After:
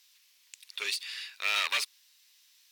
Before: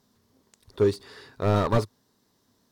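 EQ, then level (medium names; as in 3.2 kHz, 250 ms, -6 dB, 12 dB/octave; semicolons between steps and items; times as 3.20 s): resonant high-pass 2.5 kHz, resonance Q 4.1; treble shelf 3.9 kHz +7 dB; +3.0 dB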